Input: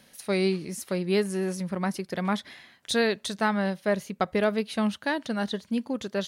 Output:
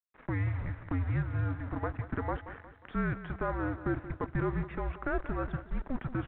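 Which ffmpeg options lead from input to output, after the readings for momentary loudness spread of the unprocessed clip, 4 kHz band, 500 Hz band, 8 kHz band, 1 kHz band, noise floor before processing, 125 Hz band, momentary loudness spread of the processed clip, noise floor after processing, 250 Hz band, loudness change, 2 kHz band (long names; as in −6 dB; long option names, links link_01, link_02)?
5 LU, below −25 dB, −11.5 dB, below −40 dB, −6.5 dB, −60 dBFS, +3.0 dB, 5 LU, −57 dBFS, −8.5 dB, −7.0 dB, −8.0 dB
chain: -filter_complex "[0:a]asplit=2[link_01][link_02];[link_02]acompressor=threshold=-33dB:ratio=12,volume=0dB[link_03];[link_01][link_03]amix=inputs=2:normalize=0,alimiter=limit=-22dB:level=0:latency=1:release=28,aeval=exprs='val(0)*gte(abs(val(0)),0.0141)':channel_layout=same,aecho=1:1:179|358|537|716|895:0.211|0.0993|0.0467|0.0219|0.0103,highpass=frequency=240:width_type=q:width=0.5412,highpass=frequency=240:width_type=q:width=1.307,lowpass=frequency=2200:width_type=q:width=0.5176,lowpass=frequency=2200:width_type=q:width=0.7071,lowpass=frequency=2200:width_type=q:width=1.932,afreqshift=-270" -ar 8000 -c:a pcm_mulaw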